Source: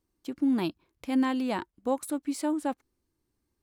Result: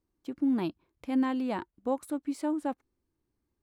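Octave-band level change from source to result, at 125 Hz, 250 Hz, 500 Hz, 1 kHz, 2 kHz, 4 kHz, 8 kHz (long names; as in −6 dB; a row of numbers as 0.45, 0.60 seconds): −1.5, −1.5, −2.0, −2.5, −4.5, −7.0, −9.5 decibels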